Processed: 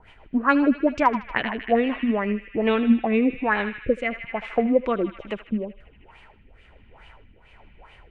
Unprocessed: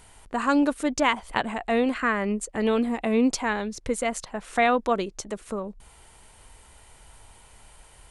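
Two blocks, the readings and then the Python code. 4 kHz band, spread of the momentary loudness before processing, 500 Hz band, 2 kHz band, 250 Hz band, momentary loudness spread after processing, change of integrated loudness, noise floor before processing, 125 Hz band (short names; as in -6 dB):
-3.0 dB, 11 LU, +2.5 dB, +1.5 dB, +3.5 dB, 10 LU, +2.5 dB, -53 dBFS, +2.5 dB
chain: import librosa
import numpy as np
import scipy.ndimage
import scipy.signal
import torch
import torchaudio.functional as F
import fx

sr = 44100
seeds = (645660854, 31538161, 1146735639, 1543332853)

y = fx.filter_lfo_lowpass(x, sr, shape='sine', hz=2.3, low_hz=210.0, high_hz=2700.0, q=3.8)
y = fx.echo_banded(y, sr, ms=78, feedback_pct=84, hz=2500.0, wet_db=-10)
y = fx.rotary_switch(y, sr, hz=7.5, then_hz=1.2, switch_at_s=1.15)
y = y * librosa.db_to_amplitude(2.0)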